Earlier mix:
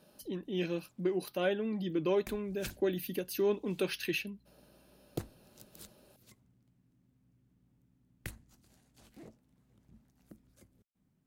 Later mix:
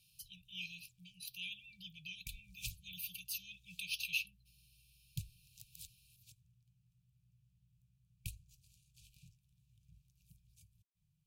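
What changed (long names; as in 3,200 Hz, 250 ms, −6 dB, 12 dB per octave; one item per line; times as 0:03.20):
speech: add high-pass filter 240 Hz 24 dB per octave
master: add linear-phase brick-wall band-stop 170–2,300 Hz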